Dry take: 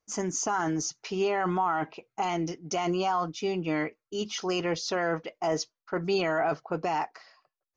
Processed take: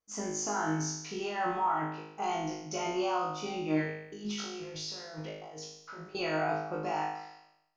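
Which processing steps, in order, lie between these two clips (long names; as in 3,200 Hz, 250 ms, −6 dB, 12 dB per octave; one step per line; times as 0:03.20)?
0:03.84–0:06.15: compressor whose output falls as the input rises −40 dBFS, ratio −1
flutter between parallel walls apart 3.3 metres, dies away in 0.8 s
level −8.5 dB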